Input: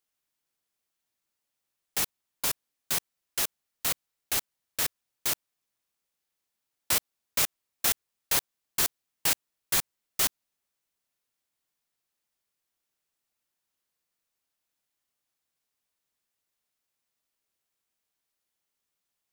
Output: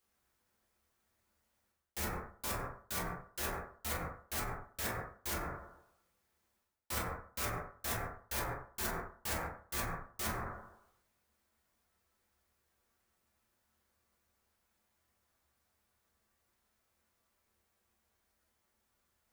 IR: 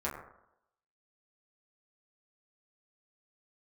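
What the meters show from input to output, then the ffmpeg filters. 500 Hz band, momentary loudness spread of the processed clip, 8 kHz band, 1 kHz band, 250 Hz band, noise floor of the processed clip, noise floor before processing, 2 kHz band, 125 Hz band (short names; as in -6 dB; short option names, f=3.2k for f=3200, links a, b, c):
-0.5 dB, 4 LU, -13.5 dB, -0.5 dB, +0.5 dB, -80 dBFS, -84 dBFS, -5.5 dB, +4.5 dB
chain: -filter_complex "[0:a]lowshelf=f=160:g=10.5[a];[1:a]atrim=start_sample=2205[b];[a][b]afir=irnorm=-1:irlink=0,areverse,acompressor=threshold=-42dB:ratio=4,areverse,volume=3.5dB"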